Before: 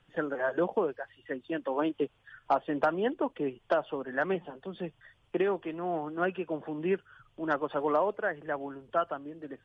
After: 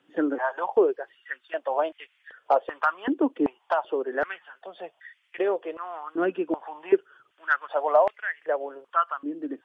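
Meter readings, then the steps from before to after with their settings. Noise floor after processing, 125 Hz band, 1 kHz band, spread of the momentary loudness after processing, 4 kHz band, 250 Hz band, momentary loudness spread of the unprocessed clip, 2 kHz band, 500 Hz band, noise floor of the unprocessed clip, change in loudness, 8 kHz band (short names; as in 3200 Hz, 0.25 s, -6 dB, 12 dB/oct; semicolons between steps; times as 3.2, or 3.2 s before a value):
-69 dBFS, under -10 dB, +5.5 dB, 15 LU, +1.0 dB, +4.0 dB, 11 LU, +5.5 dB, +4.5 dB, -68 dBFS, +5.0 dB, n/a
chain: stepped high-pass 2.6 Hz 290–2000 Hz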